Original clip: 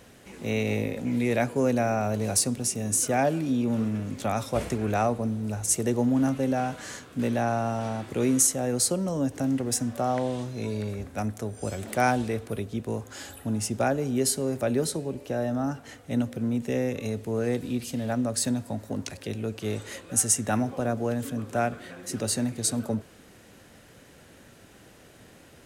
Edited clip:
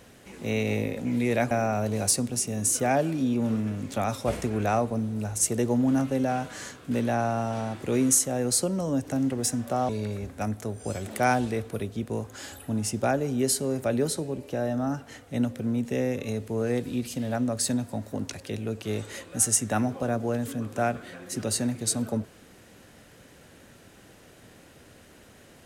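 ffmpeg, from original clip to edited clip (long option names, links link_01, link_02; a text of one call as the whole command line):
ffmpeg -i in.wav -filter_complex "[0:a]asplit=3[link_01][link_02][link_03];[link_01]atrim=end=1.512[link_04];[link_02]atrim=start=1.788:end=10.172[link_05];[link_03]atrim=start=10.658[link_06];[link_04][link_05]acrossfade=duration=0.004:curve1=hsin:curve2=hsin[link_07];[link_07][link_06]acrossfade=duration=0.004:curve1=hsin:curve2=hsin" out.wav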